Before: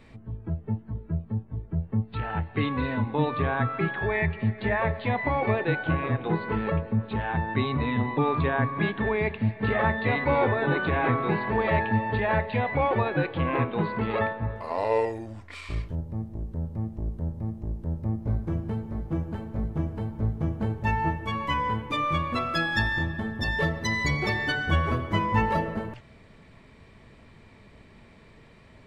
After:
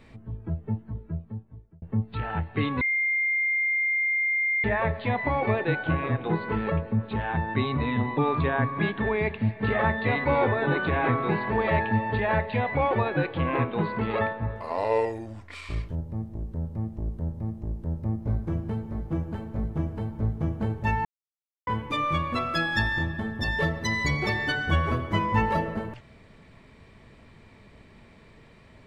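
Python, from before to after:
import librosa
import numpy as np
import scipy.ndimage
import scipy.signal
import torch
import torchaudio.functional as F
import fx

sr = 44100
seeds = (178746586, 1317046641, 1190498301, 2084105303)

y = fx.edit(x, sr, fx.fade_out_span(start_s=0.81, length_s=1.01),
    fx.bleep(start_s=2.81, length_s=1.83, hz=2110.0, db=-22.0),
    fx.silence(start_s=21.05, length_s=0.62), tone=tone)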